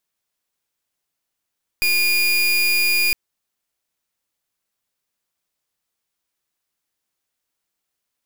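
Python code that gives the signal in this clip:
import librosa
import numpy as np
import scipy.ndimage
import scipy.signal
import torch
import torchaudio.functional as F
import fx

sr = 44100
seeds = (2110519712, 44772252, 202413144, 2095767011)

y = fx.pulse(sr, length_s=1.31, hz=2430.0, level_db=-17.5, duty_pct=31)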